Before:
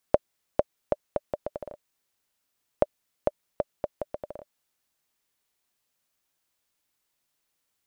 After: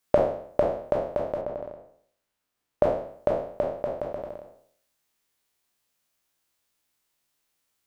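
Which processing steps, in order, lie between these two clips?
spectral trails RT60 0.61 s; 1.41–2.83 high shelf 3000 Hz -8 dB

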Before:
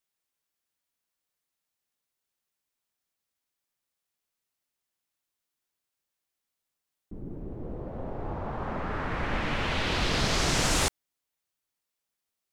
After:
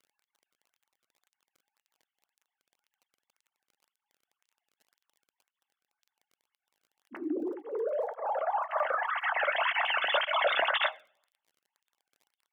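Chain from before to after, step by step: sine-wave speech; notch 2400 Hz, Q 9.1; on a send at -9.5 dB: reverb RT60 0.55 s, pre-delay 3 ms; on the sum: crackle 28/s -49 dBFS; tape flanging out of phase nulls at 1.9 Hz, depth 1.2 ms; gain +2 dB

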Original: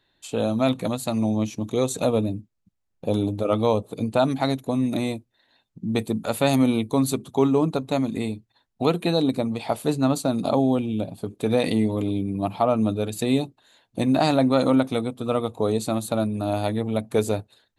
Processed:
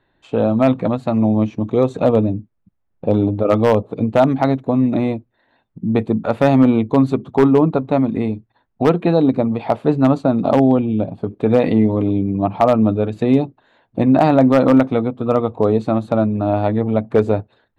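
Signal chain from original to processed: LPF 1700 Hz 12 dB/oct; wavefolder -10.5 dBFS; gain +7.5 dB

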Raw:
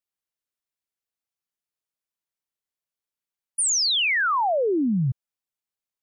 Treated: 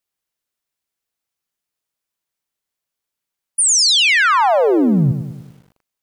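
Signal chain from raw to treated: lo-fi delay 99 ms, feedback 55%, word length 9-bit, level -9 dB; gain +8 dB

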